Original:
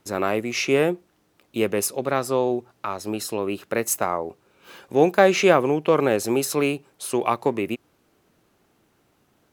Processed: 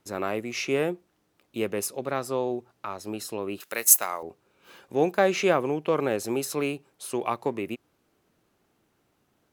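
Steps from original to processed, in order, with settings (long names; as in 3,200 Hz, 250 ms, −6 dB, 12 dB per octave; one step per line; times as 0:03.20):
0:03.60–0:04.23: spectral tilt +4.5 dB per octave
level −6 dB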